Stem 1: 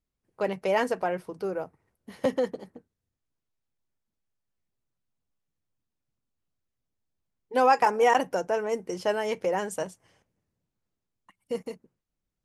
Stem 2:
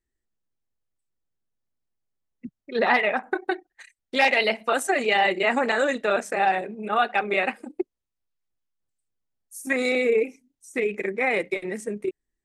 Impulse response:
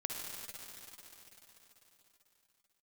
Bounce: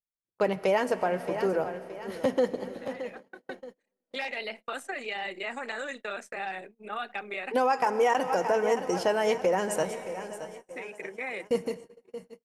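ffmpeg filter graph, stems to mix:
-filter_complex "[0:a]volume=1.41,asplit=4[s0][s1][s2][s3];[s1]volume=0.211[s4];[s2]volume=0.224[s5];[1:a]acrossover=split=350|1100|4300[s6][s7][s8][s9];[s6]acompressor=threshold=0.00708:ratio=4[s10];[s7]acompressor=threshold=0.02:ratio=4[s11];[s8]acompressor=threshold=0.0355:ratio=4[s12];[s9]acompressor=threshold=0.00631:ratio=4[s13];[s10][s11][s12][s13]amix=inputs=4:normalize=0,volume=0.473[s14];[s3]apad=whole_len=548729[s15];[s14][s15]sidechaincompress=threshold=0.00708:ratio=4:attack=20:release=893[s16];[2:a]atrim=start_sample=2205[s17];[s4][s17]afir=irnorm=-1:irlink=0[s18];[s5]aecho=0:1:622|1244|1866|2488|3110|3732:1|0.41|0.168|0.0689|0.0283|0.0116[s19];[s0][s16][s18][s19]amix=inputs=4:normalize=0,agate=range=0.0355:threshold=0.00708:ratio=16:detection=peak,alimiter=limit=0.168:level=0:latency=1:release=213"

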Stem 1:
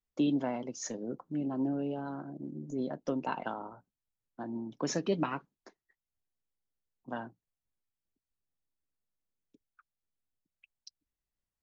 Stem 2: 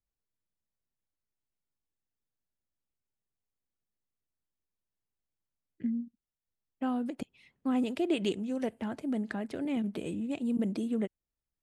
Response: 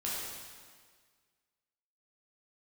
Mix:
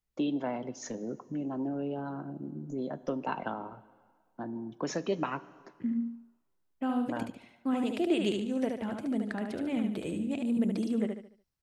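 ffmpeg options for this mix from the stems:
-filter_complex "[0:a]bass=f=250:g=5,treble=f=4000:g=-6,acrossover=split=330[s0][s1];[s0]acompressor=threshold=0.01:ratio=6[s2];[s2][s1]amix=inputs=2:normalize=0,volume=1.06,asplit=2[s3][s4];[s4]volume=0.106[s5];[1:a]volume=1,asplit=2[s6][s7];[s7]volume=0.596[s8];[2:a]atrim=start_sample=2205[s9];[s5][s9]afir=irnorm=-1:irlink=0[s10];[s8]aecho=0:1:73|146|219|292|365:1|0.37|0.137|0.0507|0.0187[s11];[s3][s6][s10][s11]amix=inputs=4:normalize=0"

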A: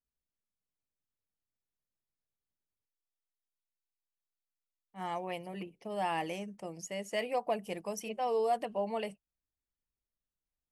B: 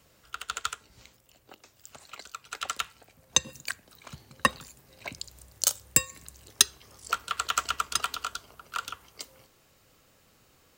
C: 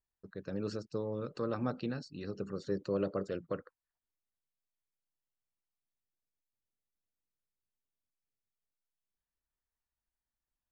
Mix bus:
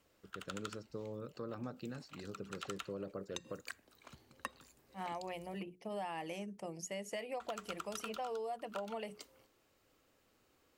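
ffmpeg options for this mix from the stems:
-filter_complex "[0:a]bandreject=f=60:t=h:w=6,bandreject=f=120:t=h:w=6,bandreject=f=180:t=h:w=6,bandreject=f=240:t=h:w=6,bandreject=f=300:t=h:w=6,bandreject=f=360:t=h:w=6,bandreject=f=420:t=h:w=6,volume=0.944[s0];[1:a]lowshelf=f=220:t=q:w=1.5:g=-9,alimiter=limit=0.299:level=0:latency=1:release=370,bass=f=250:g=7,treble=f=4000:g=-4,volume=0.316,asplit=3[s1][s2][s3];[s1]atrim=end=5.59,asetpts=PTS-STARTPTS,afade=t=out:st=5.586:d=0.004:c=hsin[s4];[s2]atrim=start=5.59:end=7.4,asetpts=PTS-STARTPTS,volume=0[s5];[s3]atrim=start=7.4,asetpts=PTS-STARTPTS,afade=t=in:d=0.004:c=hsin[s6];[s4][s5][s6]concat=n=3:v=0:a=1[s7];[2:a]volume=0.473[s8];[s0][s7][s8]amix=inputs=3:normalize=0,acompressor=threshold=0.0126:ratio=10"

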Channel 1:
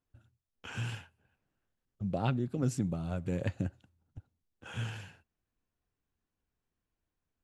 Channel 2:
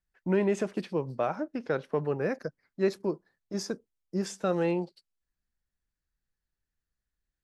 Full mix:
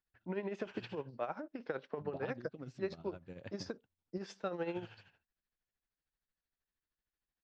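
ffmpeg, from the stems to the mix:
-filter_complex "[0:a]volume=0.355[s0];[1:a]acompressor=threshold=0.0282:ratio=2.5,volume=0.891[s1];[s0][s1]amix=inputs=2:normalize=0,tremolo=f=13:d=0.66,lowpass=f=4800:w=0.5412,lowpass=f=4800:w=1.3066,lowshelf=f=240:g=-9"

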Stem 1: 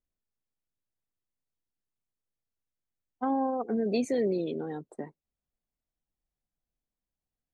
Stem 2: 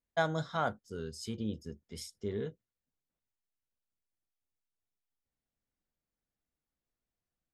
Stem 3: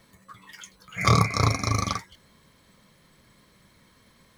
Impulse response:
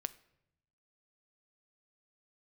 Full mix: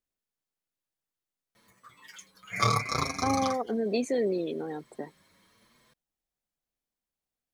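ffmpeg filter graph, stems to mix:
-filter_complex "[0:a]volume=1.26[s0];[2:a]asplit=2[s1][s2];[s2]adelay=6.6,afreqshift=1[s3];[s1][s3]amix=inputs=2:normalize=1,adelay=1550,volume=0.891[s4];[s0][s4]amix=inputs=2:normalize=0,lowshelf=f=170:g=-10.5"

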